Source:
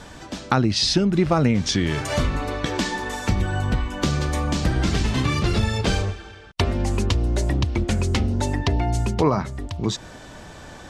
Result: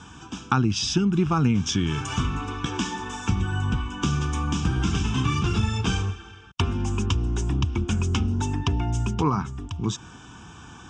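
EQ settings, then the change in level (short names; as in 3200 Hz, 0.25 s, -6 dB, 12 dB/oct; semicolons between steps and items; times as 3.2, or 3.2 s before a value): HPF 65 Hz; LPF 8000 Hz 12 dB/oct; fixed phaser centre 2900 Hz, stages 8; 0.0 dB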